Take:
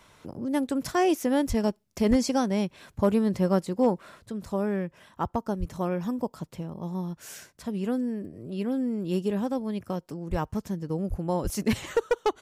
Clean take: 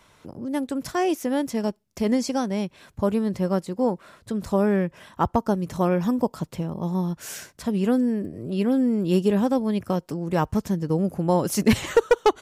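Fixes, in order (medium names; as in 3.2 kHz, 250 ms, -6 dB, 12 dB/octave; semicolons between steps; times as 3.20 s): clip repair -13 dBFS; de-plosive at 1.48/2.09/5.59/10.30/11.09/11.43 s; trim 0 dB, from 4.26 s +7 dB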